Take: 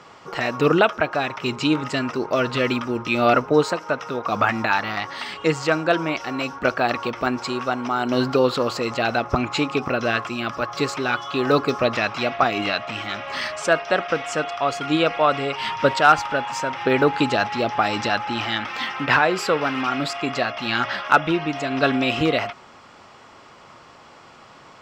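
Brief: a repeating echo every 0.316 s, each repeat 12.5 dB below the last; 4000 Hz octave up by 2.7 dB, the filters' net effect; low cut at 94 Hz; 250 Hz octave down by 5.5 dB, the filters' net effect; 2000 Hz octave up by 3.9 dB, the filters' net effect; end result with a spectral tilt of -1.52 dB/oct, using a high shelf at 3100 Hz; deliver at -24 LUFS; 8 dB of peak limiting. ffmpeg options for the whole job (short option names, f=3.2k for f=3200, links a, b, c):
-af "highpass=94,equalizer=f=250:t=o:g=-7,equalizer=f=2k:t=o:g=6,highshelf=f=3.1k:g=-4,equalizer=f=4k:t=o:g=4,alimiter=limit=-9dB:level=0:latency=1,aecho=1:1:316|632|948:0.237|0.0569|0.0137,volume=-1.5dB"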